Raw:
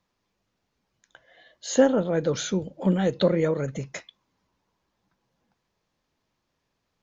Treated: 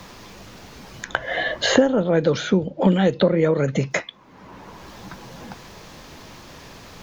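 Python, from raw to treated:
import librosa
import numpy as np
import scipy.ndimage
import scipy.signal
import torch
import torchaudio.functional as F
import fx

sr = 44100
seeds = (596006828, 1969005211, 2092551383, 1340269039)

y = fx.lowpass(x, sr, hz=4400.0, slope=12, at=(2.02, 3.91))
y = fx.band_squash(y, sr, depth_pct=100)
y = F.gain(torch.from_numpy(y), 5.5).numpy()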